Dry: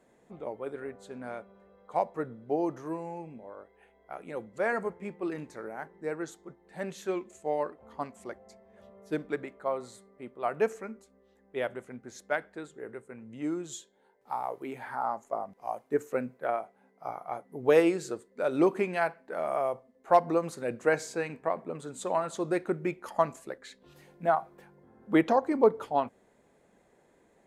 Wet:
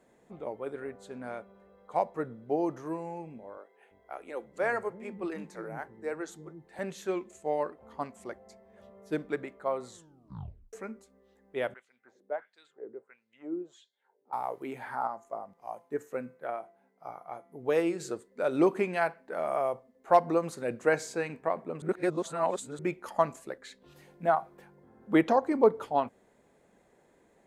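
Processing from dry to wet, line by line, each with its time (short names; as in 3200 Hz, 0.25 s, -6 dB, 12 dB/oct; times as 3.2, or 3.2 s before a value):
3.57–6.79 bands offset in time highs, lows 0.34 s, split 250 Hz
9.88 tape stop 0.85 s
11.74–14.33 LFO band-pass sine 1.5 Hz 320–4500 Hz
15.07–18 resonator 170 Hz, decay 0.52 s, mix 50%
21.82–22.79 reverse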